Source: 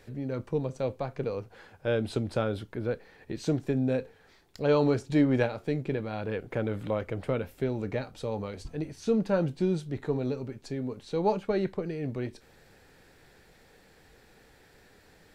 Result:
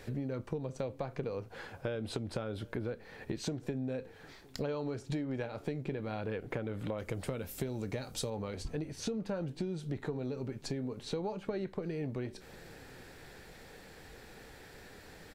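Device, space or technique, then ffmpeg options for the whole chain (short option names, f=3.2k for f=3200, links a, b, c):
serial compression, leveller first: -filter_complex "[0:a]asettb=1/sr,asplit=3[a][b][c];[a]atrim=end=6.984[d];[b]atrim=start=6.98:end=8.3,asetpts=PTS-STARTPTS,afade=t=in:d=0.004:c=qsin,afade=t=out:st=1.316:d=0.004:c=qsin,bass=f=250:g=2,treble=f=4k:g=13[e];[c]atrim=start=8.296[f];[d][e]acrossfade=d=0.004:c1=hsin:c2=qsin[g];[g][f]acrossfade=d=0.004:c1=qsin:c2=hsin,acompressor=threshold=-28dB:ratio=3,acompressor=threshold=-40dB:ratio=5,asplit=2[h][i];[i]adelay=758,volume=-23dB,highshelf=f=4k:g=-17.1[j];[h][j]amix=inputs=2:normalize=0,volume=5.5dB"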